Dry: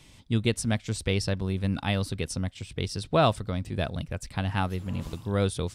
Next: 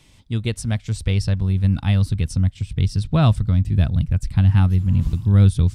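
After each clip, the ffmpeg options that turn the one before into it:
ffmpeg -i in.wav -af "asubboost=boost=10.5:cutoff=160" out.wav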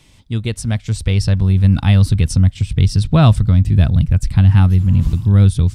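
ffmpeg -i in.wav -filter_complex "[0:a]dynaudnorm=framelen=520:gausssize=5:maxgain=11.5dB,asplit=2[link_01][link_02];[link_02]alimiter=limit=-13dB:level=0:latency=1:release=21,volume=-3dB[link_03];[link_01][link_03]amix=inputs=2:normalize=0,volume=-1.5dB" out.wav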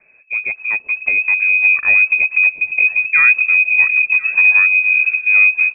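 ffmpeg -i in.wav -af "aecho=1:1:1035:0.112,lowpass=frequency=2200:width_type=q:width=0.5098,lowpass=frequency=2200:width_type=q:width=0.6013,lowpass=frequency=2200:width_type=q:width=0.9,lowpass=frequency=2200:width_type=q:width=2.563,afreqshift=-2600,volume=-1.5dB" out.wav

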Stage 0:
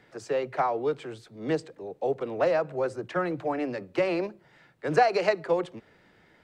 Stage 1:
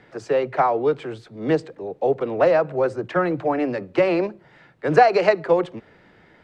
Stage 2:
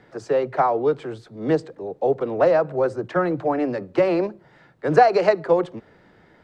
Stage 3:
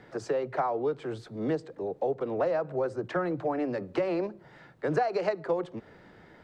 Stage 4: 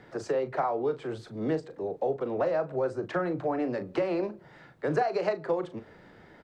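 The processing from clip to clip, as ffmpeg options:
ffmpeg -i in.wav -af "aemphasis=mode=reproduction:type=50kf,volume=7.5dB" out.wav
ffmpeg -i in.wav -af "equalizer=frequency=2500:width_type=o:width=0.96:gain=-5.5" out.wav
ffmpeg -i in.wav -af "acompressor=threshold=-30dB:ratio=2.5" out.wav
ffmpeg -i in.wav -filter_complex "[0:a]asplit=2[link_01][link_02];[link_02]adelay=38,volume=-11dB[link_03];[link_01][link_03]amix=inputs=2:normalize=0" out.wav

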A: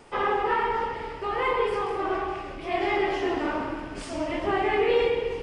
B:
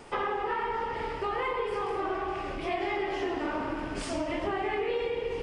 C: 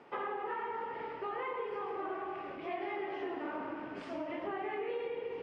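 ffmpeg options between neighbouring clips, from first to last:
ffmpeg -i in.wav -af "acompressor=threshold=-31dB:ratio=5,volume=2.5dB" out.wav
ffmpeg -i in.wav -af "highpass=190,lowpass=2500,volume=-7dB" out.wav

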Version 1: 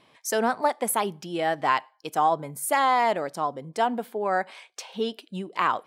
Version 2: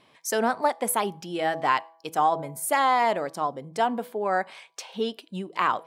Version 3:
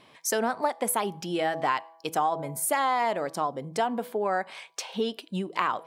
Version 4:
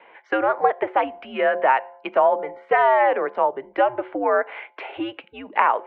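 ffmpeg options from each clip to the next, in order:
ffmpeg -i in.wav -af "bandreject=frequency=163.3:width_type=h:width=4,bandreject=frequency=326.6:width_type=h:width=4,bandreject=frequency=489.9:width_type=h:width=4,bandreject=frequency=653.2:width_type=h:width=4,bandreject=frequency=816.5:width_type=h:width=4,bandreject=frequency=979.8:width_type=h:width=4,bandreject=frequency=1143.1:width_type=h:width=4" out.wav
ffmpeg -i in.wav -af "acompressor=threshold=-29dB:ratio=2.5,volume=3.5dB" out.wav
ffmpeg -i in.wav -af "highpass=frequency=540:width_type=q:width=0.5412,highpass=frequency=540:width_type=q:width=1.307,lowpass=frequency=2600:width_type=q:width=0.5176,lowpass=frequency=2600:width_type=q:width=0.7071,lowpass=frequency=2600:width_type=q:width=1.932,afreqshift=-120,volume=9dB" out.wav

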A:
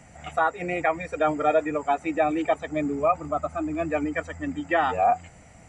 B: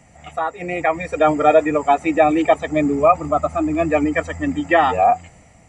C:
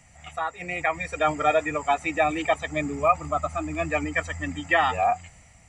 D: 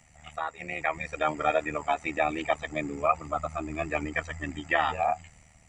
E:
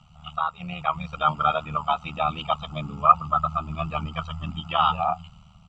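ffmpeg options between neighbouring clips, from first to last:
ffmpeg -i in.wav -af "bandreject=frequency=1500:width=7.2,dynaudnorm=framelen=250:gausssize=7:maxgain=12dB" out.wav
ffmpeg -i in.wav -af "equalizer=frequency=360:width_type=o:width=2.6:gain=-13" out.wav
ffmpeg -i in.wav -filter_complex "[0:a]acrossover=split=6600[link_01][link_02];[link_02]acompressor=threshold=-57dB:ratio=4:attack=1:release=60[link_03];[link_01][link_03]amix=inputs=2:normalize=0,tremolo=f=76:d=0.75,volume=-1dB" out.wav
ffmpeg -i in.wav -af "firequalizer=gain_entry='entry(100,0);entry(180,7);entry(300,-19);entry(840,-2);entry(1300,7);entry(1800,-29);entry(2900,5);entry(6000,-14);entry(9600,-29)':delay=0.05:min_phase=1,volume=6dB" out.wav

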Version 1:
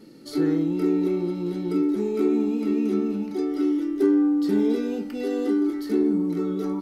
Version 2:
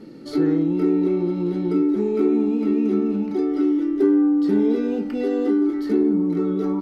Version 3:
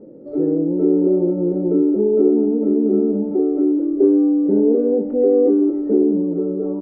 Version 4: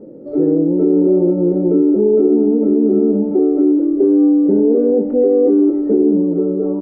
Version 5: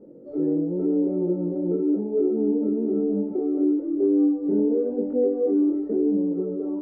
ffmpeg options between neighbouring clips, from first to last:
ffmpeg -i in.wav -filter_complex "[0:a]lowpass=frequency=2100:poles=1,asplit=2[link_01][link_02];[link_02]acompressor=threshold=-29dB:ratio=6,volume=2dB[link_03];[link_01][link_03]amix=inputs=2:normalize=0" out.wav
ffmpeg -i in.wav -af "lowpass=frequency=550:width_type=q:width=4.9,dynaudnorm=framelen=110:gausssize=13:maxgain=11.5dB,volume=-4dB" out.wav
ffmpeg -i in.wav -af "alimiter=limit=-10dB:level=0:latency=1:release=23,volume=4.5dB" out.wav
ffmpeg -i in.wav -af "flanger=delay=20:depth=3.9:speed=0.97,volume=-7.5dB" out.wav

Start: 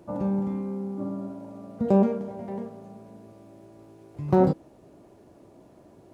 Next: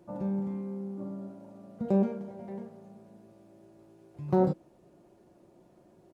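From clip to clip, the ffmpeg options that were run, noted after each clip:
ffmpeg -i in.wav -af "aecho=1:1:5.6:0.41,volume=-7.5dB" out.wav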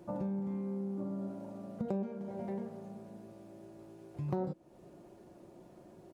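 ffmpeg -i in.wav -af "acompressor=threshold=-39dB:ratio=4,volume=4dB" out.wav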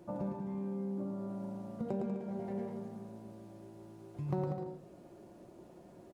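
ffmpeg -i in.wav -af "aecho=1:1:110|192.5|254.4|300.8|335.6:0.631|0.398|0.251|0.158|0.1,volume=-1.5dB" out.wav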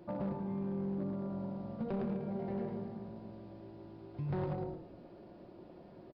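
ffmpeg -i in.wav -filter_complex "[0:a]asoftclip=type=hard:threshold=-33dB,aresample=11025,aresample=44100,asplit=5[link_01][link_02][link_03][link_04][link_05];[link_02]adelay=109,afreqshift=-45,volume=-11dB[link_06];[link_03]adelay=218,afreqshift=-90,volume=-19.9dB[link_07];[link_04]adelay=327,afreqshift=-135,volume=-28.7dB[link_08];[link_05]adelay=436,afreqshift=-180,volume=-37.6dB[link_09];[link_01][link_06][link_07][link_08][link_09]amix=inputs=5:normalize=0,volume=1dB" out.wav

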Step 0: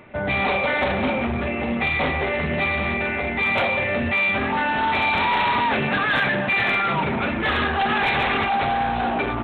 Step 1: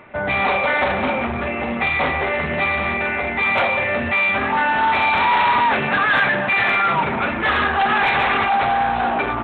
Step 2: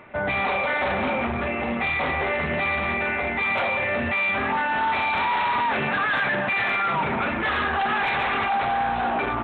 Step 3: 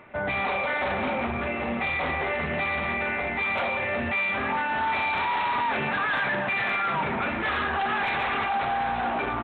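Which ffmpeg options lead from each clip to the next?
ffmpeg -i in.wav -af "equalizer=frequency=1200:width_type=o:width=2.3:gain=7.5,volume=-2dB" out.wav
ffmpeg -i in.wav -af "alimiter=limit=-14.5dB:level=0:latency=1:release=13,volume=-2.5dB" out.wav
ffmpeg -i in.wav -af "aecho=1:1:743:0.2,volume=-3dB" out.wav

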